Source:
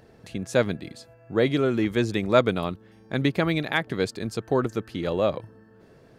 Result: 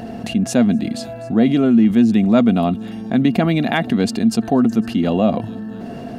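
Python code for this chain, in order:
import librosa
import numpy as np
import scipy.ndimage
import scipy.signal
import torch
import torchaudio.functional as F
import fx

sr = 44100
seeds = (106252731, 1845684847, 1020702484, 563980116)

p1 = fx.dynamic_eq(x, sr, hz=220.0, q=2.1, threshold_db=-36.0, ratio=4.0, max_db=5)
p2 = fx.small_body(p1, sr, hz=(230.0, 700.0, 2800.0), ring_ms=65, db=17)
p3 = p2 + fx.echo_wet_highpass(p2, sr, ms=250, feedback_pct=47, hz=5100.0, wet_db=-20.0, dry=0)
p4 = fx.env_flatten(p3, sr, amount_pct=50)
y = p4 * 10.0 ** (-4.0 / 20.0)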